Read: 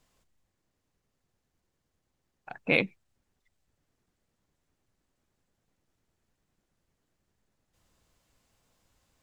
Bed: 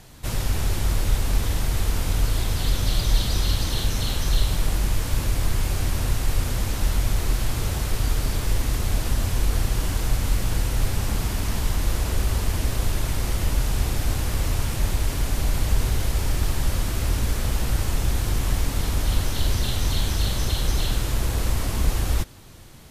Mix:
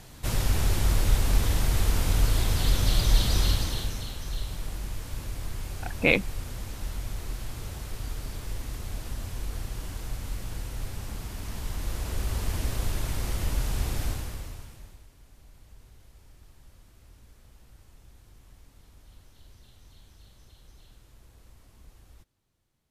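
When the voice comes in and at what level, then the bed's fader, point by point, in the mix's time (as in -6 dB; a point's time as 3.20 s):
3.35 s, +3.0 dB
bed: 3.46 s -1 dB
4.13 s -12 dB
11.28 s -12 dB
12.53 s -5.5 dB
14.05 s -5.5 dB
15.11 s -31 dB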